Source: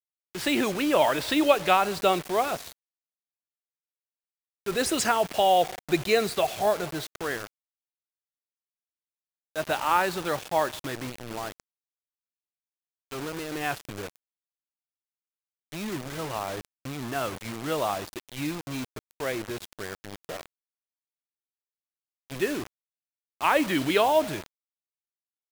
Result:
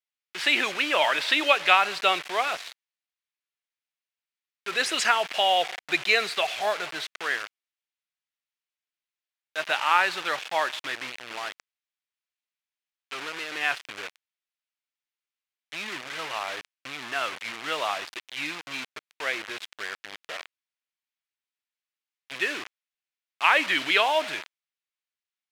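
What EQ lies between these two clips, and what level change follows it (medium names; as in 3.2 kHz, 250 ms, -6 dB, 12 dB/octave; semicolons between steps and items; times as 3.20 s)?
band-pass filter 2.4 kHz, Q 1.1; +8.5 dB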